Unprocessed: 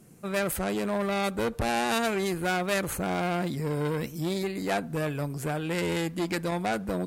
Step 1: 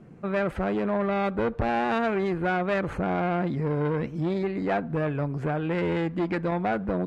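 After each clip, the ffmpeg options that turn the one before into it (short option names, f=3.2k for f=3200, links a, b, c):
-filter_complex "[0:a]lowpass=1.9k,asplit=2[a][b];[b]acompressor=threshold=-35dB:ratio=6,volume=0dB[c];[a][c]amix=inputs=2:normalize=0"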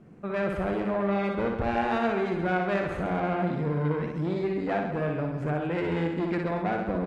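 -af "aecho=1:1:60|135|228.8|345.9|492.4:0.631|0.398|0.251|0.158|0.1,volume=-3.5dB"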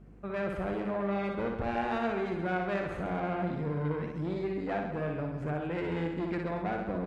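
-af "aeval=exprs='val(0)+0.00398*(sin(2*PI*50*n/s)+sin(2*PI*2*50*n/s)/2+sin(2*PI*3*50*n/s)/3+sin(2*PI*4*50*n/s)/4+sin(2*PI*5*50*n/s)/5)':c=same,volume=-5dB"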